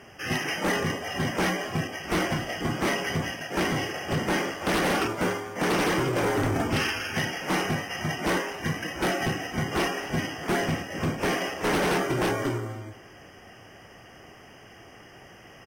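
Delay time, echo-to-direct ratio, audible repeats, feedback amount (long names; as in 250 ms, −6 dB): 250 ms, −21.0 dB, 2, 30%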